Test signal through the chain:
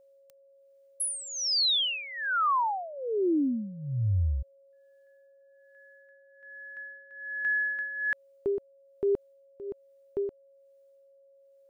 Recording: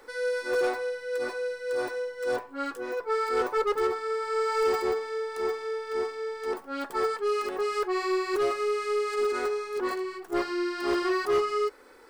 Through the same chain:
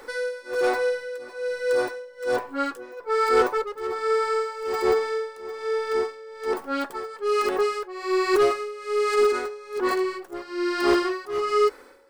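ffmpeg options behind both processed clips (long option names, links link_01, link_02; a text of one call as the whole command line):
ffmpeg -i in.wav -af "tremolo=f=1.2:d=0.86,aeval=exprs='val(0)+0.000562*sin(2*PI*550*n/s)':channel_layout=same,volume=8dB" out.wav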